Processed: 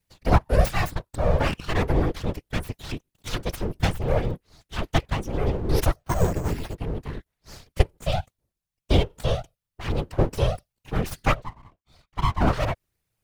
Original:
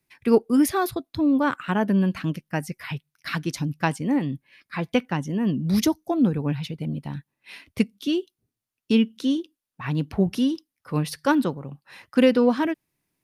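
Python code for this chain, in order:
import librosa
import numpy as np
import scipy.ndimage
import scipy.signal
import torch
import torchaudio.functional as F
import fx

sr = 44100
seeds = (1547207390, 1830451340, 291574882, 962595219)

y = fx.zero_step(x, sr, step_db=-30.0, at=(3.8, 4.34))
y = fx.vowel_filter(y, sr, vowel='e', at=(11.33, 12.4), fade=0.02)
y = np.abs(y)
y = fx.whisperise(y, sr, seeds[0])
y = fx.resample_bad(y, sr, factor=6, down='none', up='hold', at=(5.99, 6.75))
y = y * 10.0 ** (1.0 / 20.0)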